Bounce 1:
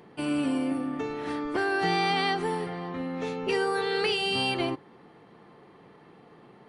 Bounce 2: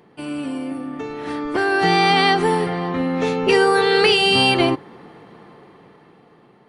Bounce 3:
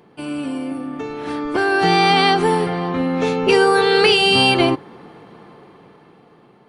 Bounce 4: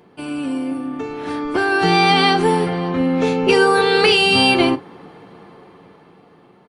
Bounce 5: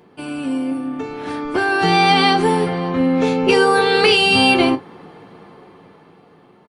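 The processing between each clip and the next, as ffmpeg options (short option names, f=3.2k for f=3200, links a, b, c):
-af "dynaudnorm=f=360:g=9:m=14dB"
-af "bandreject=f=1.9k:w=13,volume=1.5dB"
-af "aecho=1:1:11|42:0.316|0.168"
-filter_complex "[0:a]asplit=2[a][b];[b]adelay=19,volume=-12.5dB[c];[a][c]amix=inputs=2:normalize=0"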